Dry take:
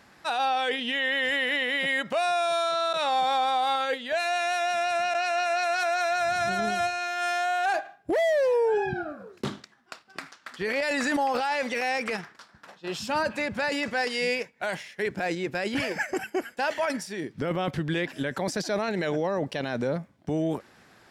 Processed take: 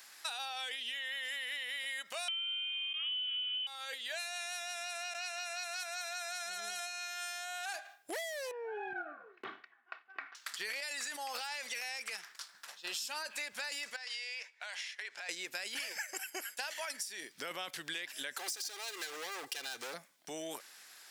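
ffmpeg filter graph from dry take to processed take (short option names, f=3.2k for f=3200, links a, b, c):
-filter_complex "[0:a]asettb=1/sr,asplit=3[a][b][c];[a]atrim=end=2.284[d];[b]atrim=start=2.28:end=3.67,asetpts=PTS-STARTPTS,afade=t=in:d=0.004:c=qsin,afade=t=out:st=1.386:d=0.004:c=qsin,equalizer=f=800:w=2:g=8,lowpass=f=3.2k:t=q:w=0.5098,lowpass=f=3.2k:t=q:w=0.6013,lowpass=f=3.2k:t=q:w=0.9,lowpass=f=3.2k:t=q:w=2.563,afreqshift=-3800[e];[c]atrim=start=3.666[f];[d][e]acrossfade=d=0.004:c1=hsin:c2=qsin[g];[g][f]acrossfade=d=0.004:c1=qsin:c2=hsin,asettb=1/sr,asplit=3[h][i][j];[h]atrim=end=8.514[k];[i]atrim=start=8.51:end=10.35,asetpts=PTS-STARTPTS,afade=t=in:d=0.004:c=qsin,afade=t=out:st=1.836:d=0.004:c=qsin,lowpass=f=2.1k:w=0.5412,lowpass=f=2.1k:w=1.3066,acompressor=threshold=-26dB:ratio=4:attack=3.2:release=140:knee=1:detection=peak,aecho=1:1:2.7:0.51,atrim=end_sample=81144[l];[j]atrim=start=10.346[m];[k][l]acrossfade=d=0.004:c1=hsin:c2=qsin[n];[n][m]acrossfade=d=0.004:c1=qsin:c2=hsin,asettb=1/sr,asplit=3[o][p][q];[o]atrim=end=13.964[r];[p]atrim=start=13.96:end=15.29,asetpts=PTS-STARTPTS,afade=t=in:d=0.004:c=qsin,afade=t=out:st=1.326:d=0.004:c=qsin,highpass=660,lowpass=5k,acompressor=threshold=-37dB:ratio=5:attack=3.2:release=140:knee=1:detection=peak[s];[q]atrim=start=15.286[t];[r][s]acrossfade=d=0.004:c1=hsin:c2=qsin[u];[u][t]acrossfade=d=0.004:c1=qsin:c2=hsin,asettb=1/sr,asplit=3[v][w][x];[v]atrim=end=18.384[y];[w]atrim=start=18.38:end=19.94,asetpts=PTS-STARTPTS,afade=t=in:d=0.004:c=qsin,afade=t=out:st=1.556:d=0.004:c=qsin,aecho=1:1:2.5:1,atrim=end_sample=68796,asoftclip=type=hard:threshold=-28.5dB[z];[x]atrim=start=19.936[aa];[y][z]acrossfade=d=0.004:c1=hsin:c2=qsin[ab];[ab][aa]acrossfade=d=0.004:c1=qsin:c2=hsin,highpass=f=240:p=1,aderivative,acompressor=threshold=-47dB:ratio=12,volume=10.5dB"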